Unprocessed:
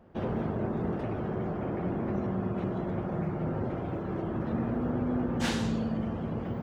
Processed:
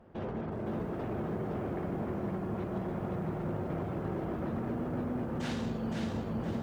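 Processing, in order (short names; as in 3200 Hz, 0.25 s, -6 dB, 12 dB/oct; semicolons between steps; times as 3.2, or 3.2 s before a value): high shelf 7700 Hz -8.5 dB; notches 60/120/180/240/300 Hz; limiter -29 dBFS, peak gain reduction 10 dB; hard clip -30.5 dBFS, distortion -27 dB; lo-fi delay 0.515 s, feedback 35%, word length 11-bit, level -3.5 dB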